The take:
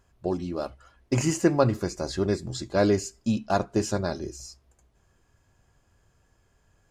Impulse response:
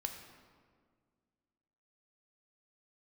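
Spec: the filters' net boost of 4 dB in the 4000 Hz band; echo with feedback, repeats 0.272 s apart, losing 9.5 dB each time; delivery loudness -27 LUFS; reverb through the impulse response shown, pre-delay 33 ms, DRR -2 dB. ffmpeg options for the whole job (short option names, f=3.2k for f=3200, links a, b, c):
-filter_complex "[0:a]equalizer=f=4k:t=o:g=5,aecho=1:1:272|544|816|1088:0.335|0.111|0.0365|0.012,asplit=2[a][b];[1:a]atrim=start_sample=2205,adelay=33[c];[b][c]afir=irnorm=-1:irlink=0,volume=2.5dB[d];[a][d]amix=inputs=2:normalize=0,volume=-4.5dB"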